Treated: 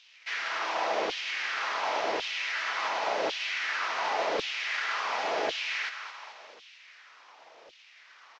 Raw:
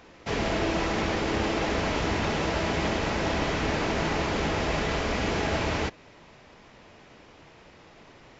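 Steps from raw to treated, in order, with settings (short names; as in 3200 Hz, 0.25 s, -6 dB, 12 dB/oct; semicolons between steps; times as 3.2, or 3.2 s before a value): CVSD 32 kbps; on a send: thinning echo 0.217 s, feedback 64%, high-pass 750 Hz, level -9 dB; on the sum: LFO high-pass saw down 0.91 Hz 480–3300 Hz; harmoniser -5 st -15 dB; gain -3.5 dB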